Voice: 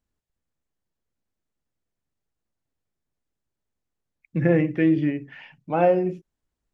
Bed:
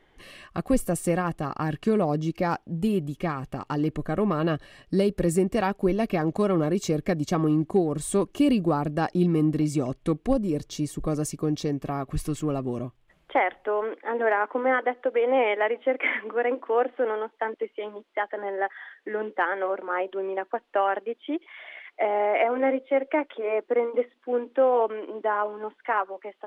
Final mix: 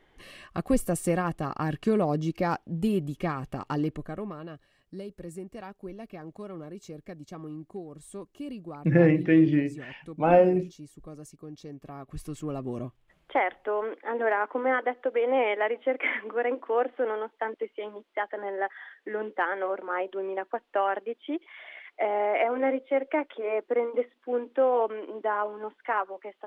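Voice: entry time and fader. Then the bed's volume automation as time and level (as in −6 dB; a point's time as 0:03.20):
4.50 s, 0.0 dB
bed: 0:03.78 −1.5 dB
0:04.48 −17 dB
0:11.50 −17 dB
0:12.85 −2.5 dB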